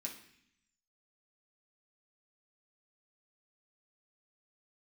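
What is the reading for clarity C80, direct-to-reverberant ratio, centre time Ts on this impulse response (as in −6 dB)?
11.5 dB, −2.0 dB, 22 ms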